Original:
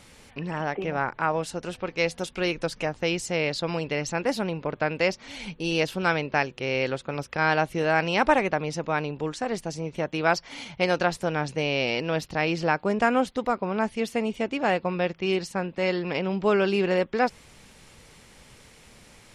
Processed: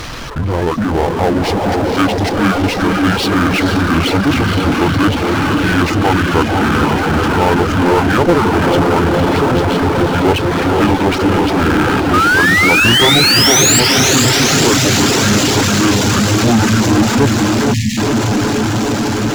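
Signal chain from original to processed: rotating-head pitch shifter -10 st; painted sound rise, 12.13–13.80 s, 1.2–7.8 kHz -24 dBFS; on a send: echo that smears into a reverb 498 ms, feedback 79%, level -4 dB; on the sum: reverb removal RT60 0.55 s; power-law waveshaper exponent 0.5; spectral selection erased 17.74–17.98 s, 260–1700 Hz; trim +5 dB

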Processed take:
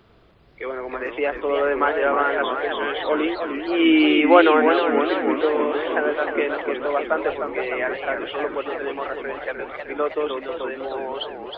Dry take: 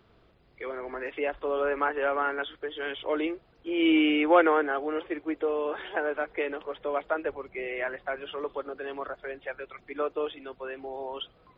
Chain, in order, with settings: modulated delay 310 ms, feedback 68%, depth 206 cents, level -6.5 dB; trim +6.5 dB

